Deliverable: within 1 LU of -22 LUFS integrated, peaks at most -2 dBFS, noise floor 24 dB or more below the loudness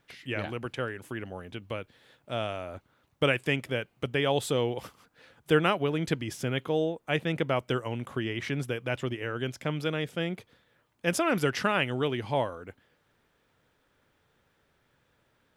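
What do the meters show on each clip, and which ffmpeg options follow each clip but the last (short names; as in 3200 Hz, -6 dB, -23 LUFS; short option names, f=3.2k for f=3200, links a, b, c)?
loudness -30.5 LUFS; peak -9.0 dBFS; loudness target -22.0 LUFS
-> -af "volume=8.5dB,alimiter=limit=-2dB:level=0:latency=1"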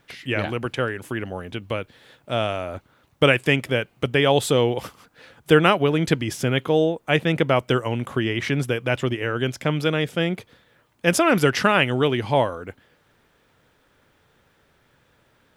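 loudness -22.0 LUFS; peak -2.0 dBFS; noise floor -63 dBFS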